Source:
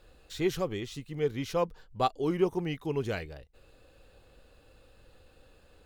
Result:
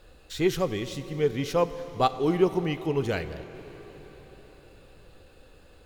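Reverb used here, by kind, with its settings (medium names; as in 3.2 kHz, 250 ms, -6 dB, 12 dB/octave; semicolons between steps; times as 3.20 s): plate-style reverb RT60 5 s, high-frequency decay 0.9×, DRR 11.5 dB; trim +4.5 dB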